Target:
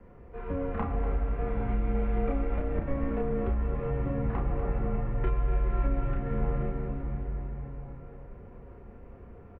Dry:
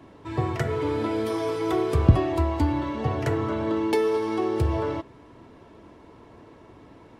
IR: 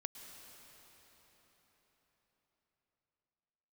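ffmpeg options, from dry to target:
-filter_complex "[0:a]acrossover=split=560|1800[s0][s1][s2];[s2]aeval=exprs='max(val(0),0)':c=same[s3];[s0][s1][s3]amix=inputs=3:normalize=0,asetrate=33075,aresample=44100,volume=3.98,asoftclip=hard,volume=0.251,highpass=100,asplit=2[s4][s5];[s5]adelay=31,volume=0.794[s6];[s4][s6]amix=inputs=2:normalize=0[s7];[1:a]atrim=start_sample=2205[s8];[s7][s8]afir=irnorm=-1:irlink=0,acompressor=threshold=0.0447:ratio=6,aecho=1:1:243|486|729|972|1215|1458|1701:0.251|0.151|0.0904|0.0543|0.0326|0.0195|0.0117,highpass=f=190:t=q:w=0.5412,highpass=f=190:t=q:w=1.307,lowpass=f=2700:t=q:w=0.5176,lowpass=f=2700:t=q:w=0.7071,lowpass=f=2700:t=q:w=1.932,afreqshift=-280,volume=1.5" -ar 48000 -c:a mp2 -b:a 48k

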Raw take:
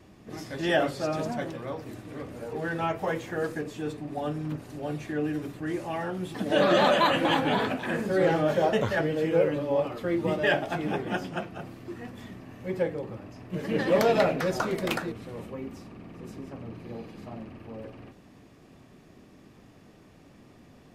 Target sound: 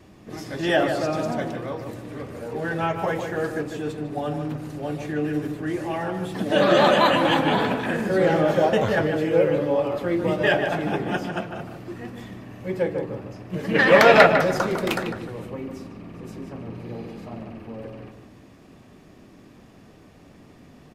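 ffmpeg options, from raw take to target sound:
-filter_complex "[0:a]asplit=3[s0][s1][s2];[s0]afade=t=out:st=13.74:d=0.02[s3];[s1]equalizer=f=1800:t=o:w=2.3:g=13.5,afade=t=in:st=13.74:d=0.02,afade=t=out:st=14.25:d=0.02[s4];[s2]afade=t=in:st=14.25:d=0.02[s5];[s3][s4][s5]amix=inputs=3:normalize=0,asoftclip=type=hard:threshold=0.473,asplit=2[s6][s7];[s7]adelay=151,lowpass=f=2100:p=1,volume=0.501,asplit=2[s8][s9];[s9]adelay=151,lowpass=f=2100:p=1,volume=0.34,asplit=2[s10][s11];[s11]adelay=151,lowpass=f=2100:p=1,volume=0.34,asplit=2[s12][s13];[s13]adelay=151,lowpass=f=2100:p=1,volume=0.34[s14];[s8][s10][s12][s14]amix=inputs=4:normalize=0[s15];[s6][s15]amix=inputs=2:normalize=0,volume=1.5"

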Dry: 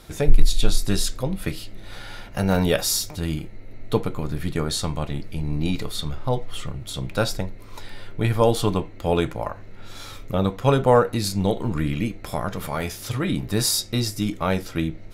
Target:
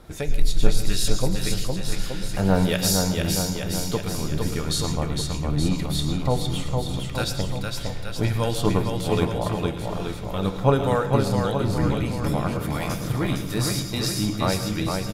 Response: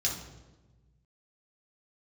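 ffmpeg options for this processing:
-filter_complex "[0:a]acrossover=split=1600[s0][s1];[s0]aeval=exprs='val(0)*(1-0.7/2+0.7/2*cos(2*PI*1.6*n/s))':c=same[s2];[s1]aeval=exprs='val(0)*(1-0.7/2-0.7/2*cos(2*PI*1.6*n/s))':c=same[s3];[s2][s3]amix=inputs=2:normalize=0,aecho=1:1:460|874|1247|1582|1884:0.631|0.398|0.251|0.158|0.1,asplit=2[s4][s5];[1:a]atrim=start_sample=2205,adelay=105[s6];[s5][s6]afir=irnorm=-1:irlink=0,volume=0.15[s7];[s4][s7]amix=inputs=2:normalize=0,volume=1.12"

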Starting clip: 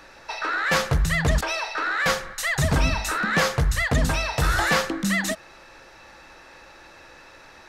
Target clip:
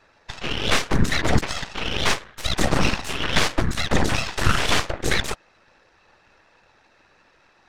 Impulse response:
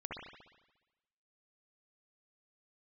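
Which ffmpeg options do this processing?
-af "afftfilt=real='hypot(re,im)*cos(2*PI*random(0))':imag='hypot(re,im)*sin(2*PI*random(1))':win_size=512:overlap=0.75,aeval=exprs='0.282*(cos(1*acos(clip(val(0)/0.282,-1,1)))-cos(1*PI/2))+0.0562*(cos(3*acos(clip(val(0)/0.282,-1,1)))-cos(3*PI/2))+0.0891*(cos(4*acos(clip(val(0)/0.282,-1,1)))-cos(4*PI/2))+0.0316*(cos(7*acos(clip(val(0)/0.282,-1,1)))-cos(7*PI/2))+0.0631*(cos(8*acos(clip(val(0)/0.282,-1,1)))-cos(8*PI/2))':c=same,adynamicsmooth=sensitivity=5:basefreq=7900,volume=1.58"

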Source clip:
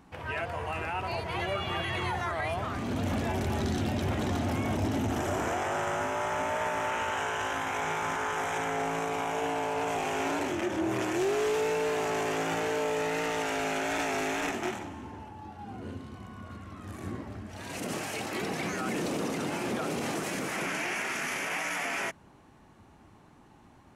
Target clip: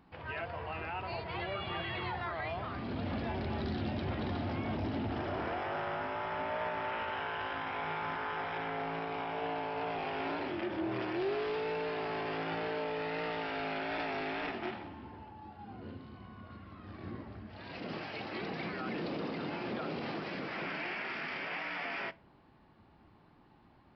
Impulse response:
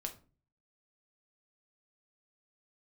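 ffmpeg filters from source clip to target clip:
-filter_complex "[0:a]asplit=2[s0][s1];[1:a]atrim=start_sample=2205,asetrate=40131,aresample=44100[s2];[s1][s2]afir=irnorm=-1:irlink=0,volume=0.376[s3];[s0][s3]amix=inputs=2:normalize=0,aresample=11025,aresample=44100,volume=0.398"

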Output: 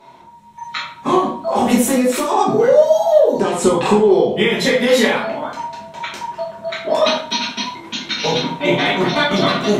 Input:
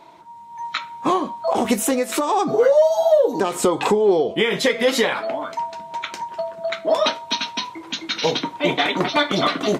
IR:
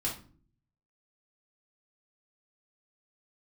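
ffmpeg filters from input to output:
-filter_complex "[0:a]asettb=1/sr,asplit=3[s0][s1][s2];[s0]atrim=end=3.304[s3];[s1]atrim=start=3.3:end=4.03,asetpts=PTS-STARTPTS,afade=t=in:d=0.004:c=qsin,afade=t=out:st=0.726:d=0.004:c=qsin,lowpass=f=11000:w=0.5412,lowpass=f=11000:w=1.3066[s4];[s2]atrim=start=4.026[s5];[s3][s4]acrossfade=d=0.004:c1=hsin:c2=qsin[s6];[s6][s5]acrossfade=d=0.004:c1=qsin:c2=hsin[s7];[1:a]atrim=start_sample=2205,asetrate=33516,aresample=44100[s8];[s7][s8]afir=irnorm=-1:irlink=0,volume=0.75"

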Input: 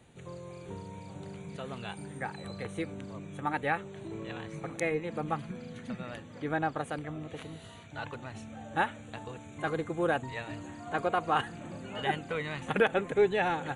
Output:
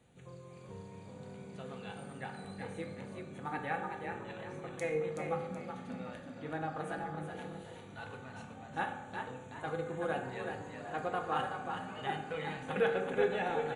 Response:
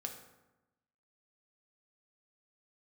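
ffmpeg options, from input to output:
-filter_complex "[0:a]asplit=5[s0][s1][s2][s3][s4];[s1]adelay=375,afreqshift=39,volume=0.531[s5];[s2]adelay=750,afreqshift=78,volume=0.197[s6];[s3]adelay=1125,afreqshift=117,volume=0.0724[s7];[s4]adelay=1500,afreqshift=156,volume=0.0269[s8];[s0][s5][s6][s7][s8]amix=inputs=5:normalize=0[s9];[1:a]atrim=start_sample=2205[s10];[s9][s10]afir=irnorm=-1:irlink=0,volume=0.562"

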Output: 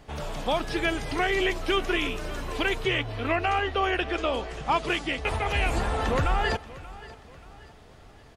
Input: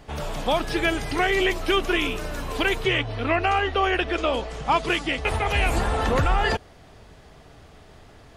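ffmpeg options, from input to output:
-filter_complex "[0:a]aecho=1:1:582|1164|1746:0.119|0.0487|0.02,acrossover=split=10000[s0][s1];[s1]acompressor=threshold=0.00158:ratio=4:attack=1:release=60[s2];[s0][s2]amix=inputs=2:normalize=0,volume=0.668"

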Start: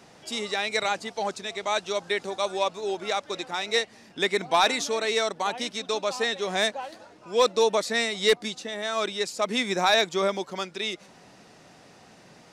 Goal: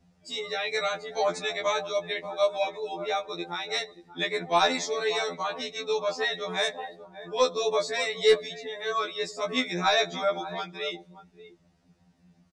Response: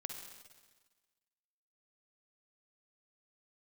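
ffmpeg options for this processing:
-filter_complex "[0:a]asettb=1/sr,asplit=3[s0][s1][s2];[s0]atrim=end=1.114[s3];[s1]atrim=start=1.11:end=1.72,asetpts=PTS-STARTPTS,afade=t=in:d=0.004:c=qsin,afade=t=out:st=0.606:d=0.004:c=qsin,acontrast=37[s4];[s2]atrim=start=1.716[s5];[s3][s4]acrossfade=d=0.004:c1=hsin:c2=qsin[s6];[s6][s5]acrossfade=d=0.004:c1=qsin:c2=hsin,asettb=1/sr,asplit=3[s7][s8][s9];[s7]atrim=end=2.424[s10];[s8]atrim=start=2.42:end=2.94,asetpts=PTS-STARTPTS,afade=t=in:d=0.004:c=qsin,afade=t=out:st=0.516:d=0.004:c=qsin,aecho=1:1:3.1:0.61,atrim=end_sample=22932[s11];[s9]atrim=start=2.936[s12];[s10][s11]acrossfade=d=0.004:c1=hsin:c2=qsin[s13];[s13][s12]acrossfade=d=0.004:c1=qsin:c2=hsin,asplit=2[s14][s15];[s15]adelay=583.1,volume=0.224,highshelf=f=4000:g=-13.1[s16];[s14][s16]amix=inputs=2:normalize=0,asplit=2[s17][s18];[1:a]atrim=start_sample=2205,asetrate=48510,aresample=44100,adelay=18[s19];[s18][s19]afir=irnorm=-1:irlink=0,volume=0.266[s20];[s17][s20]amix=inputs=2:normalize=0,aeval=exprs='val(0)+0.00316*(sin(2*PI*60*n/s)+sin(2*PI*2*60*n/s)/2+sin(2*PI*3*60*n/s)/3+sin(2*PI*4*60*n/s)/4+sin(2*PI*5*60*n/s)/5)':c=same,afftdn=nr=18:nf=-38,afftfilt=real='re*2*eq(mod(b,4),0)':imag='im*2*eq(mod(b,4),0)':win_size=2048:overlap=0.75"

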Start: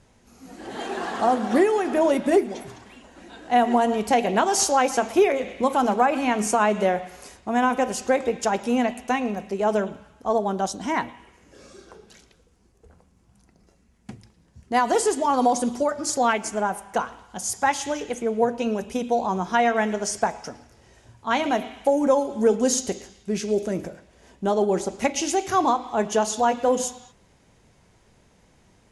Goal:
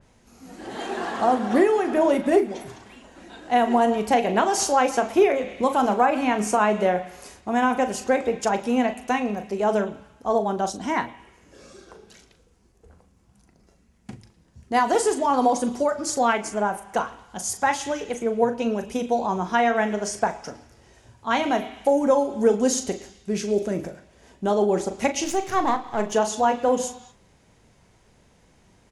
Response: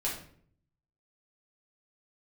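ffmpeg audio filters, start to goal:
-filter_complex "[0:a]asettb=1/sr,asplit=3[s0][s1][s2];[s0]atrim=end=25.244[s3];[s1]atrim=start=25.24:end=26.12,asetpts=PTS-STARTPTS,afade=t=in:d=0.004:c=qsin,afade=t=out:st=0.876:d=0.004:c=qsin,aeval=exprs='if(lt(val(0),0),0.447*val(0),val(0))':c=same[s4];[s2]atrim=start=26.116[s5];[s3][s4]acrossfade=d=0.004:c1=hsin:c2=qsin[s6];[s6][s5]acrossfade=d=0.004:c1=qsin:c2=hsin,asplit=2[s7][s8];[s8]adelay=39,volume=0.299[s9];[s7][s9]amix=inputs=2:normalize=0,adynamicequalizer=threshold=0.0112:dfrequency=3400:dqfactor=0.7:tfrequency=3400:tqfactor=0.7:attack=5:release=100:ratio=0.375:range=2:mode=cutabove:tftype=highshelf"

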